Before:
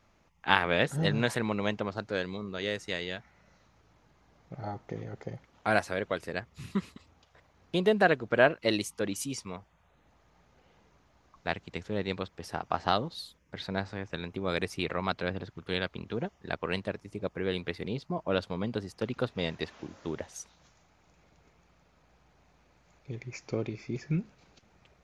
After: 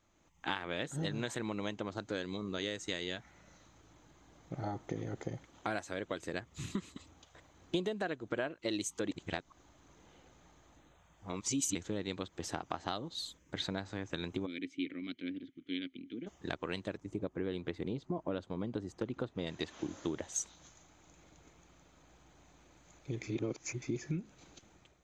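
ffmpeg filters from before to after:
-filter_complex "[0:a]asplit=3[a][b][c];[a]afade=t=out:st=14.45:d=0.02[d];[b]asplit=3[e][f][g];[e]bandpass=f=270:t=q:w=8,volume=0dB[h];[f]bandpass=f=2.29k:t=q:w=8,volume=-6dB[i];[g]bandpass=f=3.01k:t=q:w=8,volume=-9dB[j];[h][i][j]amix=inputs=3:normalize=0,afade=t=in:st=14.45:d=0.02,afade=t=out:st=16.26:d=0.02[k];[c]afade=t=in:st=16.26:d=0.02[l];[d][k][l]amix=inputs=3:normalize=0,asettb=1/sr,asplit=3[m][n][o];[m]atrim=end=16.974[p];[n]atrim=start=16.97:end=19.47,asetpts=PTS-STARTPTS,afade=t=in:d=0.004:c=qsin,afade=t=out:st=2.496:d=0.004:c=qsin,highshelf=f=2.1k:g=-11.5[q];[o]atrim=start=19.466[r];[p][q]acrossfade=d=0.004:c1=hsin:c2=qsin[s];[s][r]acrossfade=d=0.004:c1=qsin:c2=hsin,asplit=5[t][u][v][w][x];[t]atrim=end=9.112[y];[u]atrim=start=9.108:end=11.752,asetpts=PTS-STARTPTS,areverse[z];[v]atrim=start=11.748:end=23.232[aa];[w]atrim=start=23.228:end=23.822,asetpts=PTS-STARTPTS,areverse[ab];[x]atrim=start=23.818[ac];[y][z]acrossfade=d=0.004:c1=hsin:c2=hsin[ad];[ad][aa]acrossfade=d=0.004:c1=hsin:c2=hsin[ae];[ae][ab]acrossfade=d=0.004:c1=hsin:c2=hsin[af];[af][ac]acrossfade=d=0.004:c1=hsin:c2=hsin,acompressor=threshold=-36dB:ratio=5,superequalizer=6b=2:13b=1.58:15b=2.82:16b=0.562,dynaudnorm=f=110:g=7:m=9.5dB,volume=-8.5dB"

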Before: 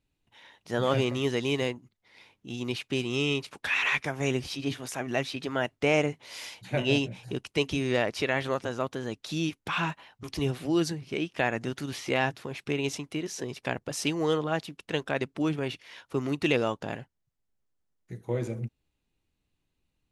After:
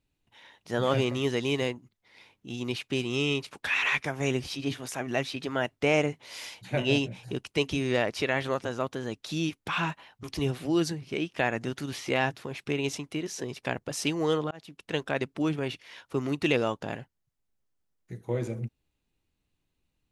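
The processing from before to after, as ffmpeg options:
-filter_complex "[0:a]asplit=2[a][b];[a]atrim=end=14.51,asetpts=PTS-STARTPTS,afade=t=out:st=14.506:d=0.004:c=hsin[c];[b]atrim=start=14.51,asetpts=PTS-STARTPTS,afade=t=in:d=0.54:c=qsin[d];[c][d]concat=n=2:v=0:a=1"

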